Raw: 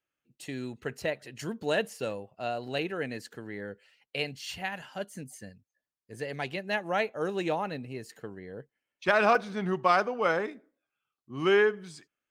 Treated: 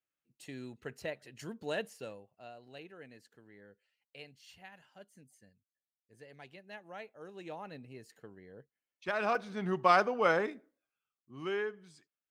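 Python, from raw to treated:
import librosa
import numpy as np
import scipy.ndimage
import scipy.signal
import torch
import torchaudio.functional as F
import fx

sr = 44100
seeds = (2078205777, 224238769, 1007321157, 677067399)

y = fx.gain(x, sr, db=fx.line((1.86, -8.0), (2.55, -18.0), (7.29, -18.0), (7.77, -10.5), (9.12, -10.5), (9.92, -1.0), (10.49, -1.0), (11.52, -12.5)))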